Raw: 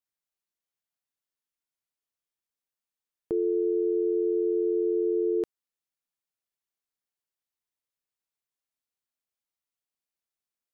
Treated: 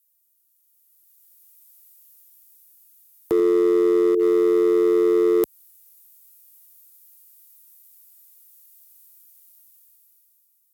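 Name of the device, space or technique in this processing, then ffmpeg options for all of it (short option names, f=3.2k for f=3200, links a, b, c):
FM broadcast chain: -filter_complex "[0:a]asettb=1/sr,asplit=3[a][b][c];[a]atrim=end=3.394[d];[b]atrim=start=3.39:end=4.15,asetpts=PTS-STARTPTS,afade=t=in:d=0.004:c=qsin,afade=t=out:st=0.756:d=0.004:c=qsin,lowshelf=f=380:g=11[e];[c]atrim=start=4.146[f];[d][e]acrossfade=d=0.004:c1=hsin:c2=qsin[g];[g][f]acrossfade=d=0.004:c1=qsin:c2=hsin,highpass=46,dynaudnorm=f=210:g=11:m=15dB,acrossover=split=300|670[h][i][j];[h]acompressor=threshold=-29dB:ratio=4[k];[i]acompressor=threshold=-11dB:ratio=4[l];[j]acompressor=threshold=-35dB:ratio=4[m];[k][l][m]amix=inputs=3:normalize=0,aemphasis=mode=production:type=50fm,alimiter=limit=-10.5dB:level=0:latency=1:release=127,asoftclip=type=hard:threshold=-13dB,lowpass=f=15k:w=0.5412,lowpass=f=15k:w=1.3066,aemphasis=mode=production:type=50fm"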